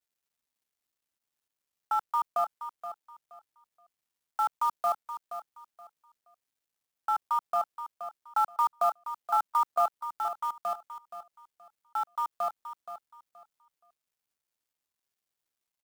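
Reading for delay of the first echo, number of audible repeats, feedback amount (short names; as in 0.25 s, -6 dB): 0.474 s, 2, 24%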